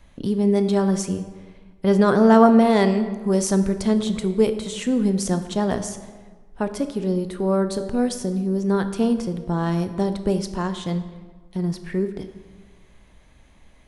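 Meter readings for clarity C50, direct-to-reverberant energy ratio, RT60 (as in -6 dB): 10.5 dB, 9.0 dB, 1.4 s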